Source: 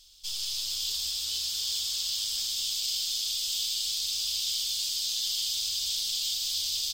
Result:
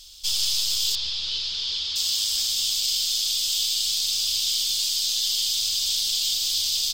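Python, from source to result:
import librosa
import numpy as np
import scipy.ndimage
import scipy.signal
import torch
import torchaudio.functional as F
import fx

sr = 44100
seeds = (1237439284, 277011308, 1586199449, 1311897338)

y = fx.rider(x, sr, range_db=4, speed_s=0.5)
y = fx.lowpass(y, sr, hz=4500.0, slope=24, at=(0.95, 1.96))
y = fx.echo_filtered(y, sr, ms=143, feedback_pct=74, hz=880.0, wet_db=-8.5)
y = F.gain(torch.from_numpy(y), 6.5).numpy()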